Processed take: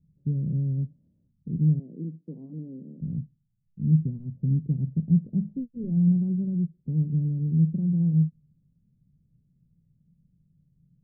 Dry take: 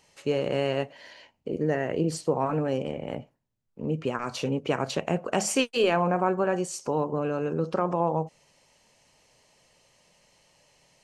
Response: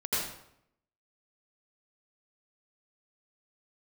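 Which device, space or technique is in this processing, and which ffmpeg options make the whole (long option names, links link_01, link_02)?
the neighbour's flat through the wall: -filter_complex "[0:a]asettb=1/sr,asplit=3[link_01][link_02][link_03];[link_01]atrim=end=1.794[link_04];[link_02]atrim=start=1.79:end=3.01,asetpts=PTS-STARTPTS,afade=type=in:duration=0.004:curve=qsin,afade=type=out:start_time=1.216:duration=0.004:curve=qsin,highpass=frequency=260:width=0.5412,highpass=frequency=260:width=1.3066[link_05];[link_03]atrim=start=3.006[link_06];[link_04][link_05]acrossfade=duration=0.004:curve1=hsin:curve2=qsin[link_07];[link_07][link_06]acrossfade=duration=0.004:curve1=qsin:curve2=hsin,lowpass=frequency=190:width=0.5412,lowpass=frequency=190:width=1.3066,equalizer=frequency=160:width_type=o:width=0.61:gain=7,volume=6.5dB"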